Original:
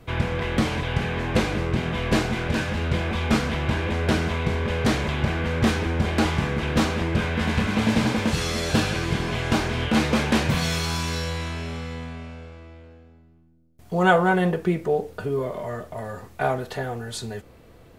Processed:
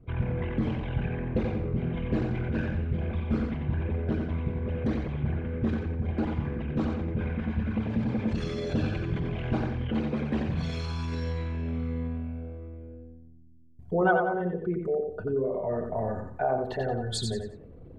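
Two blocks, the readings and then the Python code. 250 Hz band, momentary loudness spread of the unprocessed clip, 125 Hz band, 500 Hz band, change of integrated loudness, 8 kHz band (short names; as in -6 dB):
-5.0 dB, 11 LU, -4.0 dB, -4.5 dB, -6.0 dB, under -10 dB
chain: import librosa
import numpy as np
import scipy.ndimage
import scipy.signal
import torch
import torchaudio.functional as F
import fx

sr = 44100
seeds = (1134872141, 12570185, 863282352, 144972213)

p1 = fx.envelope_sharpen(x, sr, power=2.0)
p2 = fx.rider(p1, sr, range_db=10, speed_s=0.5)
p3 = p2 + fx.echo_feedback(p2, sr, ms=89, feedback_pct=30, wet_db=-5, dry=0)
y = F.gain(torch.from_numpy(p3), -6.5).numpy()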